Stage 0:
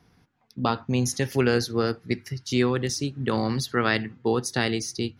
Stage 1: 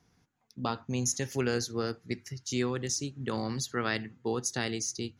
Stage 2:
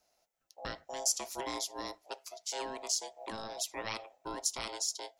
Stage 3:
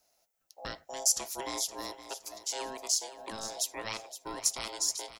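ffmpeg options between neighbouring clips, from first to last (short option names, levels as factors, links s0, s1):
-af "equalizer=f=6800:w=2.7:g=12.5,volume=0.398"
-af "crystalizer=i=3:c=0,afreqshift=-100,aeval=exprs='val(0)*sin(2*PI*670*n/s)':c=same,volume=0.447"
-af "aecho=1:1:517|1034|1551:0.224|0.0627|0.0176,crystalizer=i=1:c=0"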